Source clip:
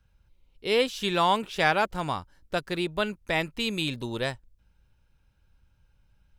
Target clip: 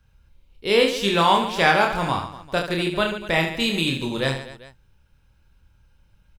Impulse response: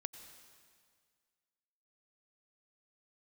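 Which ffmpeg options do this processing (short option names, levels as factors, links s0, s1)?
-filter_complex "[0:a]equalizer=f=710:t=o:w=0.32:g=-2,asplit=2[s0][s1];[s1]aecho=0:1:30|75|142.5|243.8|395.6:0.631|0.398|0.251|0.158|0.1[s2];[s0][s2]amix=inputs=2:normalize=0,volume=1.68"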